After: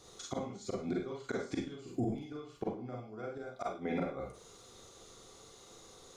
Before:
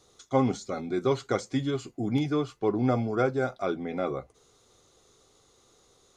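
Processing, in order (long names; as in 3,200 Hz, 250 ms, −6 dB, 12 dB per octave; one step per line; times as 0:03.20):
gate with flip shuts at −22 dBFS, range −24 dB
four-comb reverb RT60 0.32 s, combs from 33 ms, DRR −1.5 dB
brickwall limiter −28 dBFS, peak gain reduction 9.5 dB
level +2.5 dB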